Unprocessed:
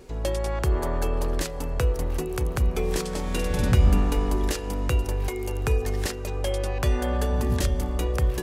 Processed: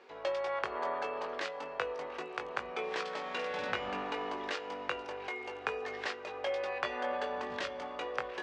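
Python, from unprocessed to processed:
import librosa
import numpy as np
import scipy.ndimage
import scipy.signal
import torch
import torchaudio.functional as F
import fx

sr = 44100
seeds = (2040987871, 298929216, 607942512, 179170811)

y = fx.bandpass_edges(x, sr, low_hz=770.0, high_hz=3300.0)
y = fx.air_absorb(y, sr, metres=91.0)
y = fx.doubler(y, sr, ms=20.0, db=-6.5)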